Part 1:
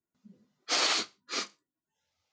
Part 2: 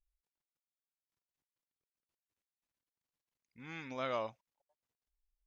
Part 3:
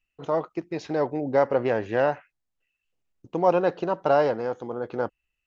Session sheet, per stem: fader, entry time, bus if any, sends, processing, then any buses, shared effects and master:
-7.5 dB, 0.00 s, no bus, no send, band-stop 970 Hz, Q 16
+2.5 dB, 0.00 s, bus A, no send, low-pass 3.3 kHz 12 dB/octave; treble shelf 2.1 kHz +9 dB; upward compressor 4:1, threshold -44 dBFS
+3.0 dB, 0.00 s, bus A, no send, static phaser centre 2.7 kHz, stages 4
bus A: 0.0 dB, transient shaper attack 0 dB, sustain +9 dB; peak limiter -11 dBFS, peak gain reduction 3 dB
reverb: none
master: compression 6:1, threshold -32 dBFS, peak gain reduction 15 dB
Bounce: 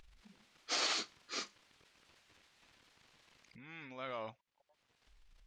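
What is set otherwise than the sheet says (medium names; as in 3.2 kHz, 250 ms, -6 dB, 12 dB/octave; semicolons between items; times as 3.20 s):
stem 2 +2.5 dB -> -8.0 dB; stem 3: muted; master: missing compression 6:1, threshold -32 dBFS, peak gain reduction 15 dB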